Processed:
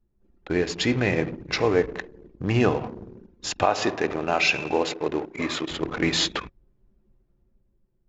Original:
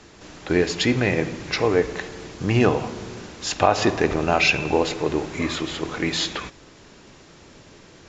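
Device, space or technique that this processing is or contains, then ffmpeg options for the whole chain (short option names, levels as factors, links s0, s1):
voice memo with heavy noise removal: -filter_complex "[0:a]asettb=1/sr,asplit=3[s0][s1][s2];[s0]atrim=end=3.644[s3];[s1]atrim=start=3.64:end=5.7,asetpts=PTS-STARTPTS,afade=t=in:d=0.004:c=qsin,afade=t=out:st=2.056:d=0.004:c=qsin,highpass=f=250:p=1[s4];[s2]atrim=start=5.696[s5];[s3][s4]acrossfade=d=0.004:c1=hsin:c2=qsin[s6];[s6][s5]acrossfade=d=0.004:c1=qsin:c2=hsin,anlmdn=39.8,dynaudnorm=f=160:g=11:m=2.37,volume=0.562"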